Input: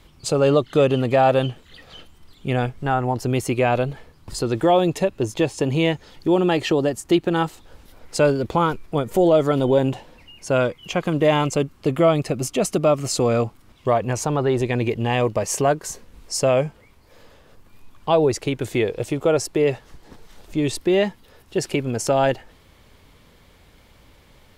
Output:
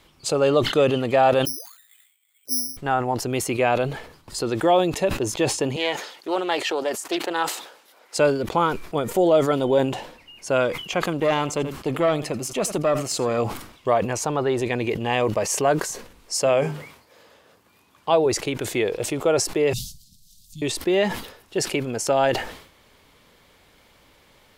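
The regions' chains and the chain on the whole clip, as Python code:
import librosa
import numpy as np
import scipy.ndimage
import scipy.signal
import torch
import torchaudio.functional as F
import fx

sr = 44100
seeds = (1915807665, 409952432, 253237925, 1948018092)

y = fx.chain(x, sr, fx.dynamic_eq(hz=130.0, q=6.8, threshold_db=-37.0, ratio=4.0, max_db=6),
    fx.auto_wah(base_hz=260.0, top_hz=2800.0, q=21.0, full_db=-21.0, direction='down'),
    fx.resample_bad(factor=8, down='none', up='zero_stuff'), at=(1.45, 2.77))
y = fx.chain(y, sr, fx.highpass(hz=480.0, slope=12),
    fx.doppler_dist(depth_ms=0.17), at=(5.76, 8.17))
y = fx.chain(y, sr, fx.tube_stage(drive_db=9.0, bias=0.5),
    fx.echo_single(ms=82, db=-20.0), at=(11.13, 13.38))
y = fx.chain(y, sr, fx.highpass(hz=88.0, slope=12),
    fx.hum_notches(base_hz=50, count=8), at=(16.35, 18.26))
y = fx.chain(y, sr, fx.cheby2_bandstop(low_hz=380.0, high_hz=1900.0, order=4, stop_db=50),
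    fx.high_shelf(hz=6700.0, db=6.0), at=(19.73, 20.62))
y = fx.low_shelf(y, sr, hz=190.0, db=-11.5)
y = fx.sustainer(y, sr, db_per_s=89.0)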